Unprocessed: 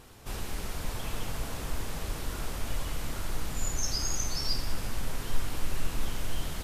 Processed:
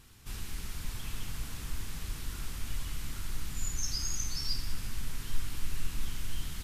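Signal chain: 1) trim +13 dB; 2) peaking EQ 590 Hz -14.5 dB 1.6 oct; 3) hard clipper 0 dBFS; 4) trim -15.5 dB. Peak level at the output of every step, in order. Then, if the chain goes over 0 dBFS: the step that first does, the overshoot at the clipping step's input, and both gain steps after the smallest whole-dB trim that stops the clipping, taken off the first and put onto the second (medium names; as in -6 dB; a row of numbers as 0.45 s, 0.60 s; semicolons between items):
-1.0 dBFS, -1.5 dBFS, -1.5 dBFS, -17.0 dBFS; nothing clips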